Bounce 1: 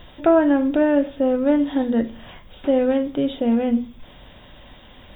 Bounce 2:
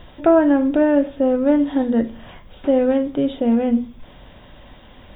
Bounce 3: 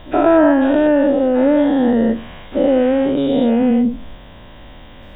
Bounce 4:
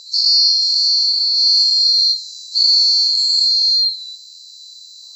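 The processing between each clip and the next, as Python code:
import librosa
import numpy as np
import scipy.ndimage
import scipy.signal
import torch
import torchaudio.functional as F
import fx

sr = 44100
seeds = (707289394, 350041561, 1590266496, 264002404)

y1 = fx.high_shelf(x, sr, hz=3200.0, db=-8.5)
y1 = y1 * librosa.db_to_amplitude(2.0)
y2 = fx.spec_dilate(y1, sr, span_ms=240)
y2 = y2 * librosa.db_to_amplitude(-1.0)
y3 = fx.band_swap(y2, sr, width_hz=4000)
y3 = fx.graphic_eq_10(y3, sr, hz=(125, 250, 500, 1000, 2000), db=(4, -8, 8, 10, -8))
y3 = fx.rider(y3, sr, range_db=10, speed_s=2.0)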